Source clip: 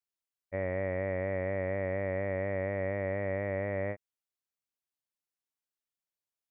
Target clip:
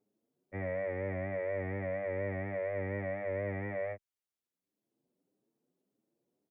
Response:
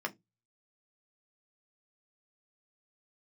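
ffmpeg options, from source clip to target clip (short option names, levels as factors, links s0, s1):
-filter_complex "[0:a]acrossover=split=170|420|1400[s0][s1][s2][s3];[s1]acompressor=mode=upward:threshold=0.00251:ratio=2.5[s4];[s0][s4][s2][s3]amix=inputs=4:normalize=0,asplit=2[s5][s6];[s6]adelay=7.5,afreqshift=1.7[s7];[s5][s7]amix=inputs=2:normalize=1"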